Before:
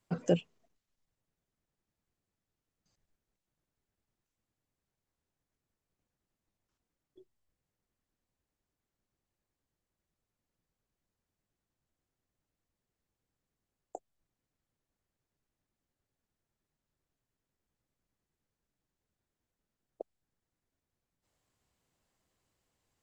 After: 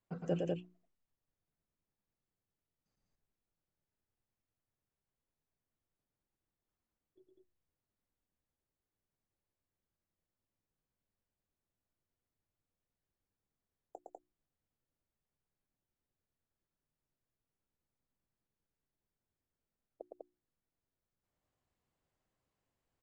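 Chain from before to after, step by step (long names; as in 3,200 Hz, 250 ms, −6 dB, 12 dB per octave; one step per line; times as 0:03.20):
high-shelf EQ 3,700 Hz −11 dB
mains-hum notches 60/120/180/240/300/360 Hz
loudspeakers that aren't time-aligned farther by 38 metres −3 dB, 68 metres −2 dB
level −7.5 dB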